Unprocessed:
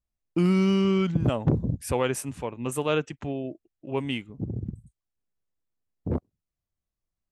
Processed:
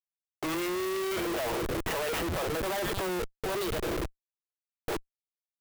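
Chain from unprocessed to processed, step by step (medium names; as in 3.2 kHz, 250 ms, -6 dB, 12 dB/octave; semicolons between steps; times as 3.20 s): gliding tape speed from 82% -> 179%; steep high-pass 350 Hz 96 dB/octave; in parallel at +3 dB: peak limiter -25 dBFS, peak gain reduction 10 dB; on the sum: comb 6.2 ms, depth 39%; repeats whose band climbs or falls 108 ms, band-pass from 2.7 kHz, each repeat 0.7 oct, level -10.5 dB; saturation -21 dBFS, distortion -13 dB; distance through air 140 m; Schmitt trigger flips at -41 dBFS; sampling jitter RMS 0.03 ms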